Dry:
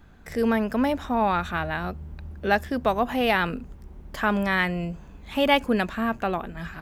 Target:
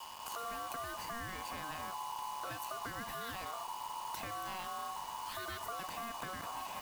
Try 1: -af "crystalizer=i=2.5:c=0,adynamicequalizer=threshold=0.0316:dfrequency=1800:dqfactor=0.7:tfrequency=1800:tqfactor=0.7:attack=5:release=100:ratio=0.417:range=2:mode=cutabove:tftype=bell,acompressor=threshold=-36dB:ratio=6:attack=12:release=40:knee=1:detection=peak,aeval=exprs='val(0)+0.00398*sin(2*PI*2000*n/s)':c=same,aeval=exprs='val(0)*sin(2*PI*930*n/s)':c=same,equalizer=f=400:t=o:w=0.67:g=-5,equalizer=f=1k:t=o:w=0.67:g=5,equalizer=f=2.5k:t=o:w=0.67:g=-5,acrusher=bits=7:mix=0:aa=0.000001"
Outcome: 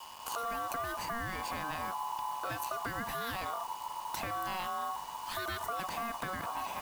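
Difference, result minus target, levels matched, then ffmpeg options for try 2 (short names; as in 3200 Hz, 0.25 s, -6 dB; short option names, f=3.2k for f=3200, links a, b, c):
compressor: peak gain reduction -6 dB
-af "crystalizer=i=2.5:c=0,adynamicequalizer=threshold=0.0316:dfrequency=1800:dqfactor=0.7:tfrequency=1800:tqfactor=0.7:attack=5:release=100:ratio=0.417:range=2:mode=cutabove:tftype=bell,acompressor=threshold=-43dB:ratio=6:attack=12:release=40:knee=1:detection=peak,aeval=exprs='val(0)+0.00398*sin(2*PI*2000*n/s)':c=same,aeval=exprs='val(0)*sin(2*PI*930*n/s)':c=same,equalizer=f=400:t=o:w=0.67:g=-5,equalizer=f=1k:t=o:w=0.67:g=5,equalizer=f=2.5k:t=o:w=0.67:g=-5,acrusher=bits=7:mix=0:aa=0.000001"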